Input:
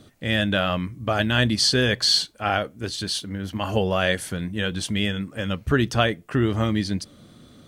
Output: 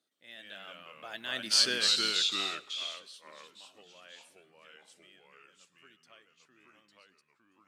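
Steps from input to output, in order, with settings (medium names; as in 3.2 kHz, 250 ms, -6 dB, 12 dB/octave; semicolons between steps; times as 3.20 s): Doppler pass-by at 1.62 s, 16 m/s, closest 2.4 m; tilt EQ +3.5 dB/octave; on a send at -20 dB: reverberation RT60 0.45 s, pre-delay 87 ms; on the sum: ever faster or slower copies 114 ms, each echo -2 st, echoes 2; high-pass 230 Hz 12 dB/octave; treble shelf 6.7 kHz -8 dB; trim -9 dB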